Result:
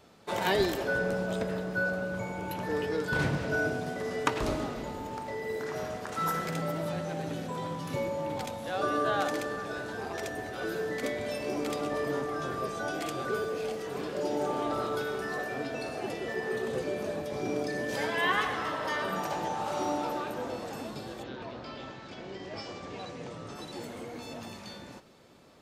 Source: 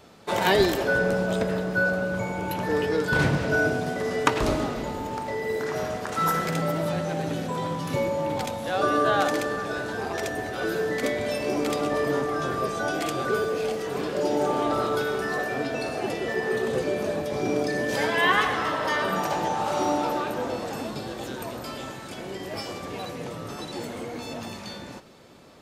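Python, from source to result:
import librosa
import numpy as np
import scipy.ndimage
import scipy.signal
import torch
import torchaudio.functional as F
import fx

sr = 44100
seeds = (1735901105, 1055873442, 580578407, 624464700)

y = fx.lowpass(x, sr, hz=fx.line((21.22, 4200.0), (23.54, 8600.0)), slope=24, at=(21.22, 23.54), fade=0.02)
y = y * 10.0 ** (-6.5 / 20.0)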